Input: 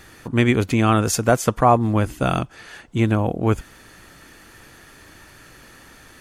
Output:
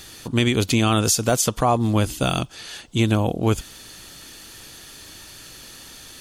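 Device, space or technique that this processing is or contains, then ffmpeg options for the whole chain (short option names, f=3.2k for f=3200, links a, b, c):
over-bright horn tweeter: -af "highshelf=f=2.6k:t=q:w=1.5:g=9,alimiter=limit=-8.5dB:level=0:latency=1:release=77"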